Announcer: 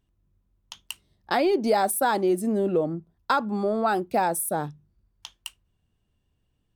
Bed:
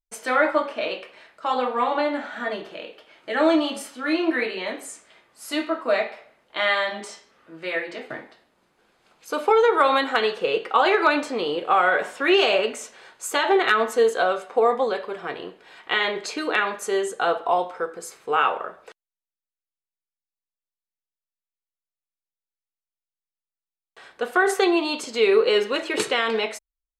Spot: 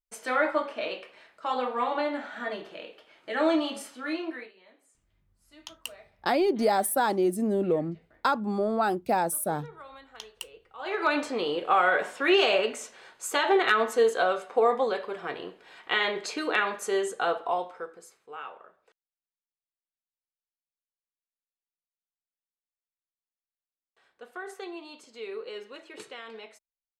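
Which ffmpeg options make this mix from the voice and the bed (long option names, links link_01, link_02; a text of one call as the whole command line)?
ffmpeg -i stem1.wav -i stem2.wav -filter_complex "[0:a]adelay=4950,volume=-2dB[link_01];[1:a]volume=19.5dB,afade=type=out:start_time=3.92:duration=0.61:silence=0.0707946,afade=type=in:start_time=10.77:duration=0.44:silence=0.0562341,afade=type=out:start_time=17.07:duration=1.18:silence=0.149624[link_02];[link_01][link_02]amix=inputs=2:normalize=0" out.wav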